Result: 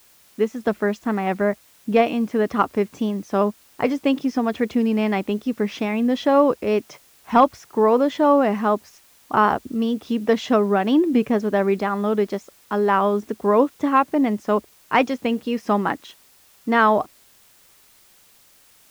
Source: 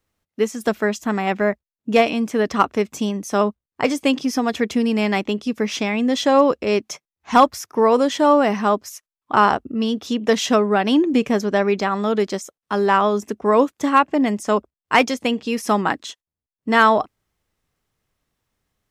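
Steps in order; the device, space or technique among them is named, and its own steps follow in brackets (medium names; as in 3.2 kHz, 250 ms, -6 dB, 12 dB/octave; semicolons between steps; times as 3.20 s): cassette deck with a dirty head (tape spacing loss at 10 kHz 23 dB; wow and flutter; white noise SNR 33 dB)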